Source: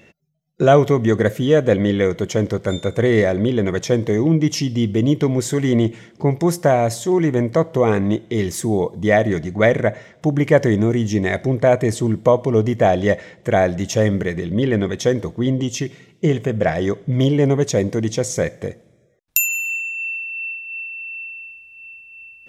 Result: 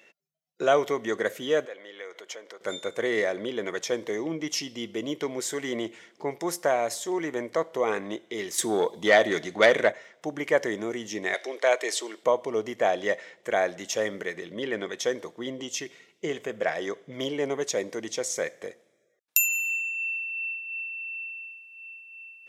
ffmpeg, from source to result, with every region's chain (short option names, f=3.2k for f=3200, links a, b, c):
-filter_complex "[0:a]asettb=1/sr,asplit=3[a][b][c];[a]atrim=end=1.654[d];[b]atrim=start=1.65:end=2.61,asetpts=PTS-STARTPTS,afade=t=in:d=0.004:c=qsin,afade=t=out:st=0.956:d=0.004:c=qsin,highshelf=f=6.2k:g=-7.5,acompressor=threshold=-27dB:ratio=2.5:attack=3.2:release=140:knee=1:detection=peak,highpass=530[e];[c]atrim=start=2.606[f];[d][e]acrossfade=d=0.004:c1=hsin:c2=qsin[g];[g][f]acrossfade=d=0.004:c1=qsin:c2=hsin,asettb=1/sr,asplit=3[h][i][j];[h]atrim=end=8.584[k];[i]atrim=start=8.58:end=9.92,asetpts=PTS-STARTPTS,afade=t=in:d=0.004:c=qsin,afade=t=out:st=1.336:d=0.004:c=qsin,equalizer=f=3.6k:w=3.3:g=6.5,acontrast=70[l];[j]atrim=start=9.916[m];[k][l]acrossfade=d=0.004:c1=hsin:c2=qsin[n];[n][m]acrossfade=d=0.004:c1=qsin:c2=hsin,asettb=1/sr,asplit=3[o][p][q];[o]atrim=end=11.344[r];[p]atrim=start=11.34:end=12.24,asetpts=PTS-STARTPTS,afade=t=in:d=0.004:c=qsin,afade=t=out:st=0.896:d=0.004:c=qsin,highpass=f=350:w=0.5412,highpass=f=350:w=1.3066,equalizer=f=3.9k:t=o:w=2:g=9[s];[q]atrim=start=12.236[t];[r][s]acrossfade=d=0.004:c1=hsin:c2=qsin[u];[u][t]acrossfade=d=0.004:c1=qsin:c2=hsin,highpass=510,equalizer=f=690:t=o:w=0.91:g=-3,volume=-4.5dB"